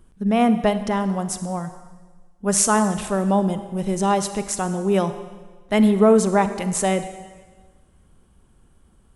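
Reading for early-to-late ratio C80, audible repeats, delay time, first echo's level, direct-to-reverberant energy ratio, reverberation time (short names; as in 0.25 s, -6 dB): 12.5 dB, none, none, none, 10.5 dB, 1.4 s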